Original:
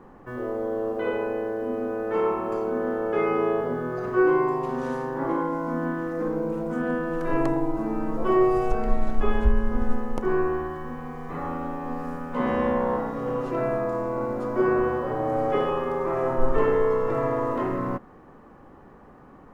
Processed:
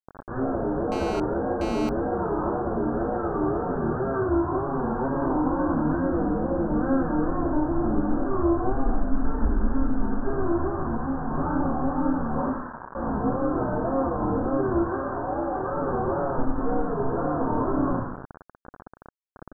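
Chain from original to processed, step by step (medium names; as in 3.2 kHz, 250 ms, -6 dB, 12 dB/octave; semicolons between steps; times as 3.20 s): peak limiter -17 dBFS, peak gain reduction 9 dB; compression 16:1, threshold -27 dBFS, peak gain reduction 8.5 dB; 12.47–12.95 s: high-pass 1.1 kHz 24 dB/octave; feedback delay 93 ms, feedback 42%, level -20.5 dB; wow and flutter 150 cents; 14.81–15.72 s: tilt EQ +3 dB/octave; AM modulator 270 Hz, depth 50%; reverberation RT60 0.65 s, pre-delay 3 ms, DRR -9.5 dB; bit crusher 5-bit; steep low-pass 1.6 kHz 96 dB/octave; 0.92–1.89 s: mobile phone buzz -29 dBFS; trim -3.5 dB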